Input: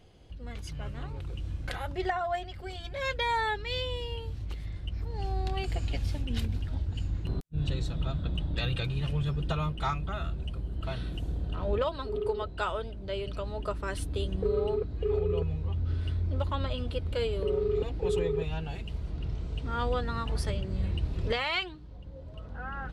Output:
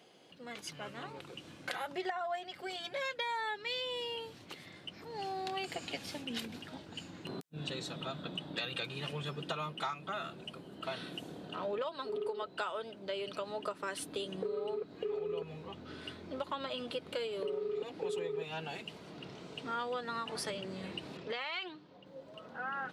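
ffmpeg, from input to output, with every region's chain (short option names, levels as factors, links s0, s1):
-filter_complex "[0:a]asettb=1/sr,asplit=3[s0][s1][s2];[s0]atrim=end=21.174[s3];[s1]atrim=start=21.17:end=22.06,asetpts=PTS-STARTPTS,afade=t=in:d=0.004:c=qsin,afade=t=out:st=0.886:d=0.004:c=qsin,lowpass=5300,acompressor=threshold=0.0224:ratio=3:attack=3.2:release=140:knee=1:detection=peak[s4];[s2]atrim=start=22.056[s5];[s3][s4]acrossfade=d=0.004:c1=hsin:c2=qsin[s6];[s6][s5]acrossfade=d=0.004:c1=qsin:c2=hsin,highpass=f=170:w=0.5412,highpass=f=170:w=1.3066,lowshelf=f=320:g=-9.5,acompressor=threshold=0.0141:ratio=6,volume=1.41"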